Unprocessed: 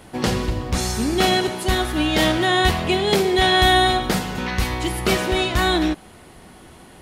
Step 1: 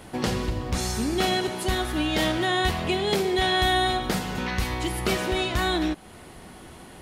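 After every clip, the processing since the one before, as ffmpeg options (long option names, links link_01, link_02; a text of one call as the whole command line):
ffmpeg -i in.wav -af "acompressor=threshold=-31dB:ratio=1.5" out.wav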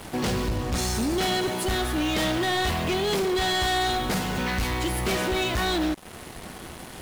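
ffmpeg -i in.wav -af "asoftclip=type=tanh:threshold=-26dB,acrusher=bits=6:mix=0:aa=0.5,volume=4.5dB" out.wav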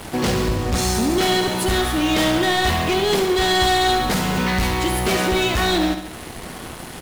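ffmpeg -i in.wav -af "aecho=1:1:70|140|210|280|350|420:0.355|0.192|0.103|0.0559|0.0302|0.0163,volume=5.5dB" out.wav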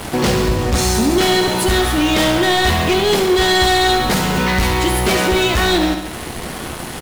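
ffmpeg -i in.wav -filter_complex "[0:a]asplit=2[link_01][link_02];[link_02]alimiter=limit=-19dB:level=0:latency=1,volume=1dB[link_03];[link_01][link_03]amix=inputs=2:normalize=0,asplit=2[link_04][link_05];[link_05]adelay=14,volume=-12dB[link_06];[link_04][link_06]amix=inputs=2:normalize=0" out.wav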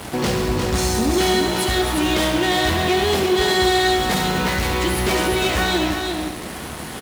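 ffmpeg -i in.wav -af "highpass=46,aecho=1:1:353:0.562,volume=-5dB" out.wav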